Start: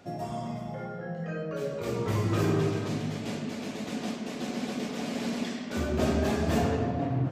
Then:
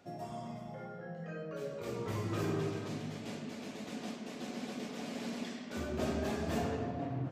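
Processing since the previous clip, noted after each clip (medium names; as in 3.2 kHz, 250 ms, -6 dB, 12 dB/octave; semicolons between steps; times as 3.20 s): bass shelf 130 Hz -4.5 dB; trim -7.5 dB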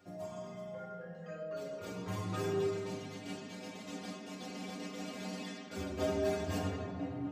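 inharmonic resonator 92 Hz, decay 0.37 s, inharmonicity 0.008; trim +10 dB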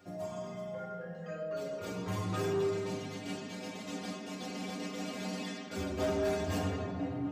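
saturation -29 dBFS, distortion -17 dB; trim +4 dB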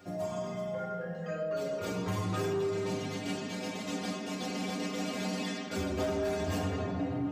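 compression, threshold -34 dBFS, peak gain reduction 6 dB; trim +5 dB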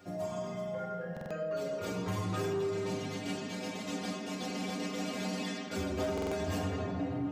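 buffer glitch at 1.12/6.13 s, samples 2048, times 3; trim -1.5 dB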